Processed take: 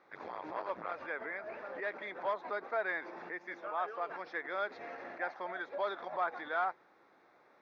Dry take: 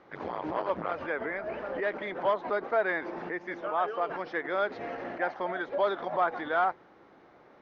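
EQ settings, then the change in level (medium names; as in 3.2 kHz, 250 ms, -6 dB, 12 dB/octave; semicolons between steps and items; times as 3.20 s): tilt EQ +3.5 dB/octave; treble shelf 4.2 kHz -10.5 dB; band-stop 3 kHz, Q 5.4; -6.0 dB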